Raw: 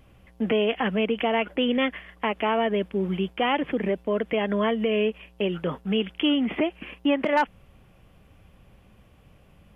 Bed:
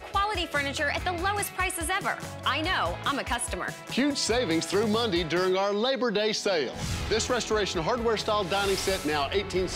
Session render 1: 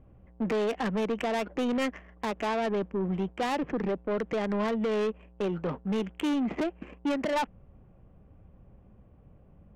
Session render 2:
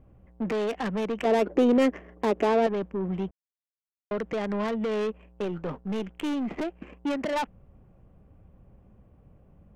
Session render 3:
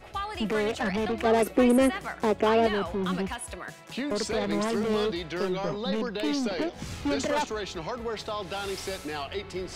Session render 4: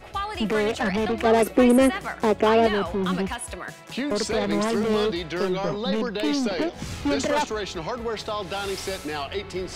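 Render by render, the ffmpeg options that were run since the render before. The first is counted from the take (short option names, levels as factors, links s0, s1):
-af "adynamicsmooth=sensitivity=1.5:basefreq=920,asoftclip=type=tanh:threshold=0.0631"
-filter_complex "[0:a]asettb=1/sr,asplit=3[s0][s1][s2];[s0]atrim=end=1.254[s3];[s1]atrim=start=1.25:end=2.67,asetpts=PTS-STARTPTS,afade=t=in:d=0.004:c=qsin,afade=t=out:st=1.416:d=0.004:c=qsin,equalizer=f=380:t=o:w=1.5:g=12.5[s4];[s2]atrim=start=2.666[s5];[s3][s4]acrossfade=d=0.004:c1=hsin:c2=qsin[s6];[s6][s5]acrossfade=d=0.004:c1=qsin:c2=hsin,asettb=1/sr,asplit=3[s7][s8][s9];[s7]atrim=end=5.444[s10];[s8]atrim=start=5.44:end=6.81,asetpts=PTS-STARTPTS,afade=t=in:d=0.004:c=qsin,afade=t=out:st=1.366:d=0.004:c=qsin,aeval=exprs='if(lt(val(0),0),0.708*val(0),val(0))':c=same[s11];[s9]atrim=start=6.806[s12];[s10][s11]acrossfade=d=0.004:c1=hsin:c2=qsin[s13];[s13][s12]acrossfade=d=0.004:c1=qsin:c2=hsin,asplit=3[s14][s15][s16];[s14]atrim=end=3.31,asetpts=PTS-STARTPTS,afade=t=out:st=3.306:d=0.004:c=hsin[s17];[s15]atrim=start=3.31:end=4.11,asetpts=PTS-STARTPTS,volume=0[s18];[s16]atrim=start=4.11,asetpts=PTS-STARTPTS,afade=t=in:d=0.004:c=hsin[s19];[s17][s18][s19]concat=n=3:v=0:a=1"
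-filter_complex "[1:a]volume=0.447[s0];[0:a][s0]amix=inputs=2:normalize=0"
-af "volume=1.58"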